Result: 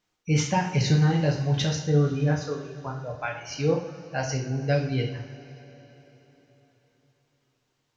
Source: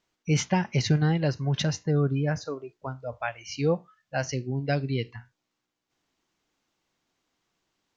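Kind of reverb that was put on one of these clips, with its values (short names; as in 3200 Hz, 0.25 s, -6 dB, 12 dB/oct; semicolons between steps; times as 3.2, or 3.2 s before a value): two-slope reverb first 0.51 s, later 4.1 s, from -18 dB, DRR -0.5 dB; gain -2 dB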